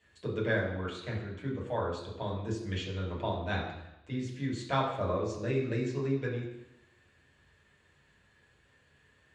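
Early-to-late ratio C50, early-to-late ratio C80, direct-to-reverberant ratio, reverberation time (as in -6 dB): 5.0 dB, 7.5 dB, -4.5 dB, 0.90 s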